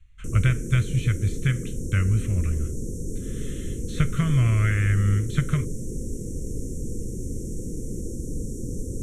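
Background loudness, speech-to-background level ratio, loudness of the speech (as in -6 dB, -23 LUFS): -33.5 LUFS, 9.0 dB, -24.5 LUFS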